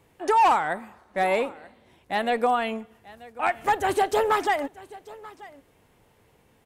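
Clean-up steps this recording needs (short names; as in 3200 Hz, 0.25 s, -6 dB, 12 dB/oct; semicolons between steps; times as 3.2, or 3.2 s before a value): clip repair -14 dBFS; inverse comb 0.935 s -20.5 dB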